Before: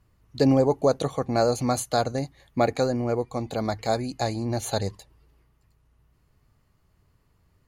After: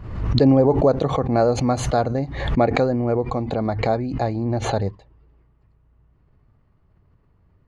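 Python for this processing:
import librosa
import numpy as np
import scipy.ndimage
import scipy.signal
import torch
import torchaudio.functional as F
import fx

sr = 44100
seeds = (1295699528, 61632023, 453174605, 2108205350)

y = fx.spacing_loss(x, sr, db_at_10k=fx.steps((0.0, 31.0), (3.52, 38.0)))
y = fx.pre_swell(y, sr, db_per_s=57.0)
y = y * 10.0 ** (5.5 / 20.0)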